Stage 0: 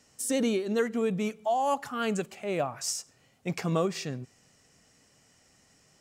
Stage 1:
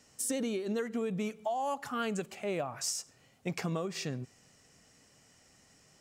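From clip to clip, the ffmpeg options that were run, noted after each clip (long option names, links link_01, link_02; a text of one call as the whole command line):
ffmpeg -i in.wav -af "acompressor=threshold=-30dB:ratio=10" out.wav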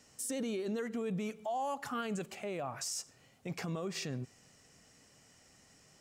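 ffmpeg -i in.wav -af "alimiter=level_in=5.5dB:limit=-24dB:level=0:latency=1:release=17,volume=-5.5dB" out.wav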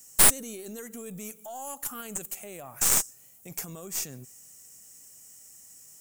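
ffmpeg -i in.wav -af "aexciter=amount=3.7:drive=7.5:freq=6300,aemphasis=mode=production:type=50fm,aeval=exprs='0.631*(cos(1*acos(clip(val(0)/0.631,-1,1)))-cos(1*PI/2))+0.0708*(cos(3*acos(clip(val(0)/0.631,-1,1)))-cos(3*PI/2))+0.251*(cos(4*acos(clip(val(0)/0.631,-1,1)))-cos(4*PI/2))+0.0708*(cos(6*acos(clip(val(0)/0.631,-1,1)))-cos(6*PI/2))':channel_layout=same,volume=-1dB" out.wav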